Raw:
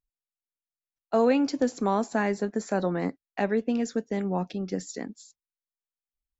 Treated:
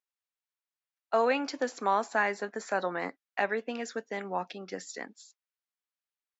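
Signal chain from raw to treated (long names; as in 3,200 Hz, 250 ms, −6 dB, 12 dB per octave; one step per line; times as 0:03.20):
high-pass filter 1,400 Hz 12 dB per octave
spectral tilt −4.5 dB per octave
level +9 dB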